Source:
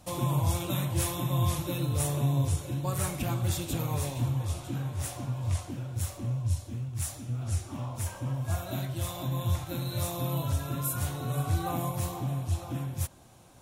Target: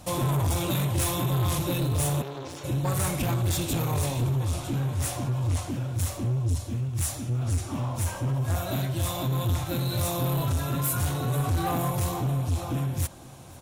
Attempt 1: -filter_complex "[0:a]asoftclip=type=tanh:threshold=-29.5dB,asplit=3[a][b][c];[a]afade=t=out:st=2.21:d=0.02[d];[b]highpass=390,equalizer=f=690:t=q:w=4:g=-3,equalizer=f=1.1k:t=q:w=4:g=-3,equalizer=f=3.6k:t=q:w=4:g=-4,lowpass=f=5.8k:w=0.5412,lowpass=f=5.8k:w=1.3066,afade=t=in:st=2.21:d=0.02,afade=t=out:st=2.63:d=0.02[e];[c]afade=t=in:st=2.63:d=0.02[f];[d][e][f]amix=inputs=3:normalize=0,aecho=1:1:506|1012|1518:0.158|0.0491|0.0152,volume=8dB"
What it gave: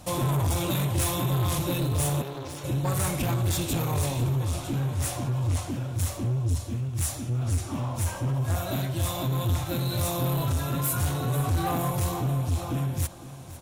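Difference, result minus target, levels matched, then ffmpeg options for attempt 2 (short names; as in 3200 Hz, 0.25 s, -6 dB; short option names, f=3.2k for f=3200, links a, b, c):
echo-to-direct +7 dB
-filter_complex "[0:a]asoftclip=type=tanh:threshold=-29.5dB,asplit=3[a][b][c];[a]afade=t=out:st=2.21:d=0.02[d];[b]highpass=390,equalizer=f=690:t=q:w=4:g=-3,equalizer=f=1.1k:t=q:w=4:g=-3,equalizer=f=3.6k:t=q:w=4:g=-4,lowpass=f=5.8k:w=0.5412,lowpass=f=5.8k:w=1.3066,afade=t=in:st=2.21:d=0.02,afade=t=out:st=2.63:d=0.02[e];[c]afade=t=in:st=2.63:d=0.02[f];[d][e][f]amix=inputs=3:normalize=0,aecho=1:1:506|1012:0.0708|0.0219,volume=8dB"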